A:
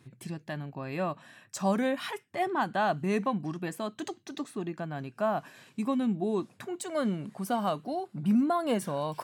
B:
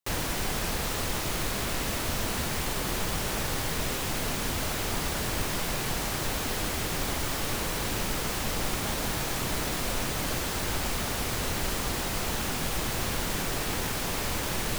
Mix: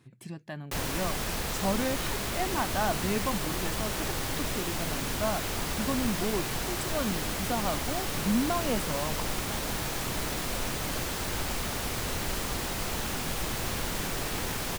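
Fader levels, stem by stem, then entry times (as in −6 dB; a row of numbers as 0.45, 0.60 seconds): −2.5, −2.0 decibels; 0.00, 0.65 seconds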